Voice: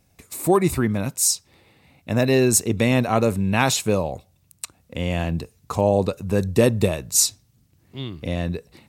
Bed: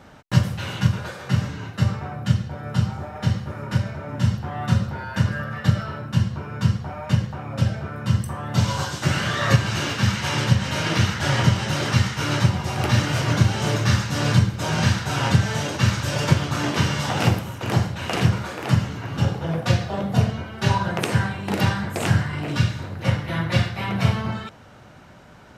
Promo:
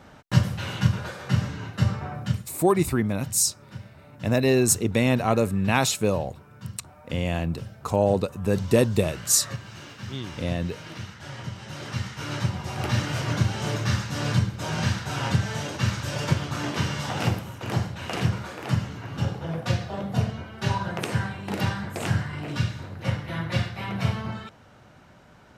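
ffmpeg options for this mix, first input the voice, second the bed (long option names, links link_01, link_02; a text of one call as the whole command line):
ffmpeg -i stem1.wav -i stem2.wav -filter_complex "[0:a]adelay=2150,volume=-2.5dB[link_01];[1:a]volume=10dB,afade=type=out:start_time=2.16:duration=0.32:silence=0.16788,afade=type=in:start_time=11.48:duration=1.38:silence=0.251189[link_02];[link_01][link_02]amix=inputs=2:normalize=0" out.wav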